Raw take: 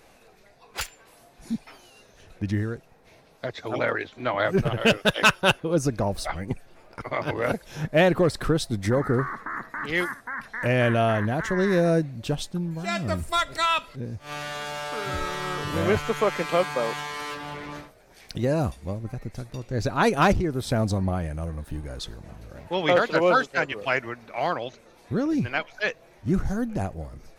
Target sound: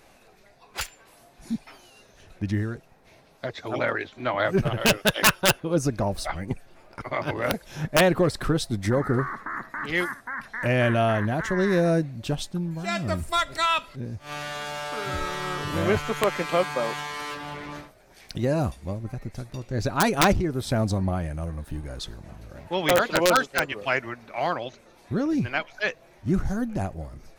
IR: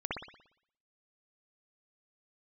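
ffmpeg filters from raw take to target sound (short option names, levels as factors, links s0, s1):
-af "bandreject=f=470:w=12,aeval=exprs='(mod(3.16*val(0)+1,2)-1)/3.16':c=same"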